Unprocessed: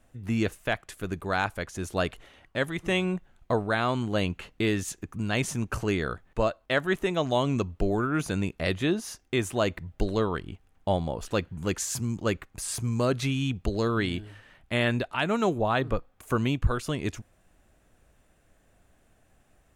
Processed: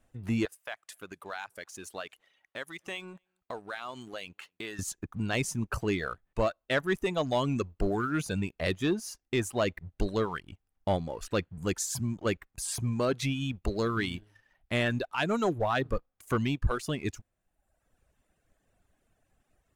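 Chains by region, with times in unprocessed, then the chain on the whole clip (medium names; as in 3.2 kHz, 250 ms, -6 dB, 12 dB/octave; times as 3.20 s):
0.45–4.79 s: high-pass 740 Hz 6 dB/octave + compression 2:1, threshold -38 dBFS + delay 246 ms -24 dB
whole clip: reverb removal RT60 1.1 s; waveshaping leveller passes 1; trim -4.5 dB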